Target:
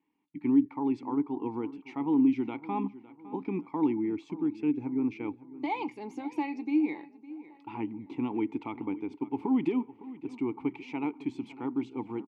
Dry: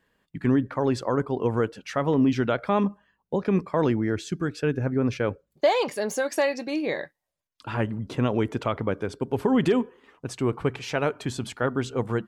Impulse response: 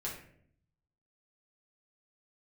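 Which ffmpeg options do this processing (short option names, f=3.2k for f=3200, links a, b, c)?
-filter_complex "[0:a]asplit=3[a][b][c];[a]bandpass=f=300:t=q:w=8,volume=0dB[d];[b]bandpass=f=870:t=q:w=8,volume=-6dB[e];[c]bandpass=f=2.24k:t=q:w=8,volume=-9dB[f];[d][e][f]amix=inputs=3:normalize=0,asplit=2[g][h];[h]adelay=558,lowpass=f=3k:p=1,volume=-17dB,asplit=2[i][j];[j]adelay=558,lowpass=f=3k:p=1,volume=0.45,asplit=2[k][l];[l]adelay=558,lowpass=f=3k:p=1,volume=0.45,asplit=2[m][n];[n]adelay=558,lowpass=f=3k:p=1,volume=0.45[o];[g][i][k][m][o]amix=inputs=5:normalize=0,volume=4.5dB"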